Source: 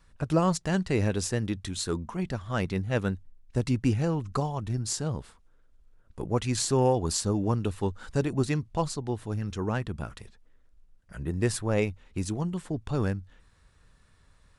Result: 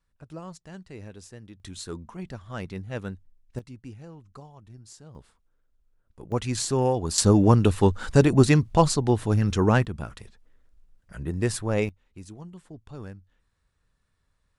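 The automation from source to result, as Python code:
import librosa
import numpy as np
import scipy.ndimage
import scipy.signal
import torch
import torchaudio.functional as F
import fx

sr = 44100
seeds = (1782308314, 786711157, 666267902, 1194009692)

y = fx.gain(x, sr, db=fx.steps((0.0, -16.0), (1.6, -6.0), (3.59, -17.0), (5.15, -9.0), (6.32, 0.0), (7.18, 9.5), (9.85, 1.0), (11.89, -12.0)))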